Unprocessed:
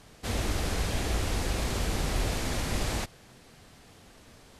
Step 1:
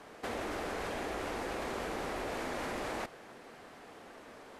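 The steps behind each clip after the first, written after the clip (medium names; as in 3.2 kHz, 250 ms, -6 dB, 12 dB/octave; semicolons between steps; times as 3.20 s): three-band isolator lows -20 dB, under 260 Hz, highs -13 dB, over 2.2 kHz; in parallel at +1 dB: compressor with a negative ratio -42 dBFS, ratio -0.5; on the sum: trim -4 dB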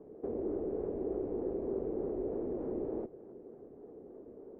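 in parallel at -3.5 dB: decimation with a swept rate 19×, swing 100% 3.3 Hz; on the sum: resonant low-pass 400 Hz, resonance Q 3.4; trim -6 dB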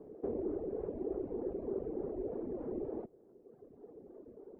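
reverb removal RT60 1.9 s; trim +1 dB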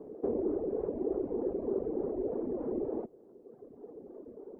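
graphic EQ 250/500/1000 Hz +5/+4/+5 dB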